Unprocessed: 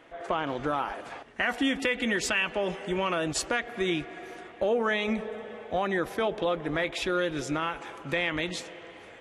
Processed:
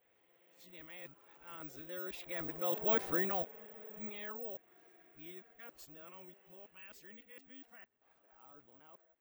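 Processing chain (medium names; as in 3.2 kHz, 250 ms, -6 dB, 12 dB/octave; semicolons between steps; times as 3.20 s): reverse the whole clip; Doppler pass-by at 3.00 s, 6 m/s, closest 1.4 m; careless resampling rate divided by 2×, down none, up zero stuff; trim -6 dB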